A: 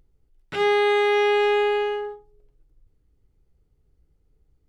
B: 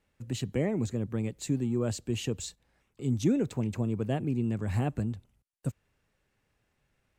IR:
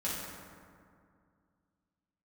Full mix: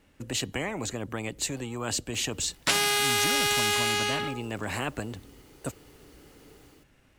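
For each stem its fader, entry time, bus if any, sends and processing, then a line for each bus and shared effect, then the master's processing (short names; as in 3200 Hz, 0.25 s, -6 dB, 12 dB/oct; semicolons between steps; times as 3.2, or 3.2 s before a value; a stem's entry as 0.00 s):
-0.5 dB, 2.15 s, no send, AGC gain up to 5 dB; HPF 970 Hz 6 dB/oct
-13.5 dB, 0.00 s, no send, dry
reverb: off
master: small resonant body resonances 280/2900 Hz, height 8 dB; spectral compressor 4:1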